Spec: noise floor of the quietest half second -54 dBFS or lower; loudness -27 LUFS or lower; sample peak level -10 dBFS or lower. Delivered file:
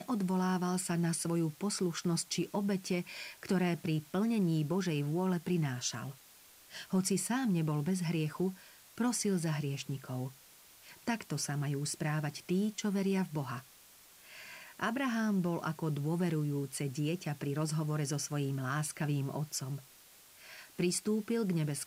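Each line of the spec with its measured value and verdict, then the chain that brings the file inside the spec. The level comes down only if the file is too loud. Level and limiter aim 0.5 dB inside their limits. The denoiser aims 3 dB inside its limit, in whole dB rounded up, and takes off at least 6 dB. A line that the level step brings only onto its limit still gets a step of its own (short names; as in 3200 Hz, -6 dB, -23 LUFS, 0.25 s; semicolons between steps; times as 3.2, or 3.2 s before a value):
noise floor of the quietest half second -59 dBFS: OK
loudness -34.5 LUFS: OK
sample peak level -20.5 dBFS: OK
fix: none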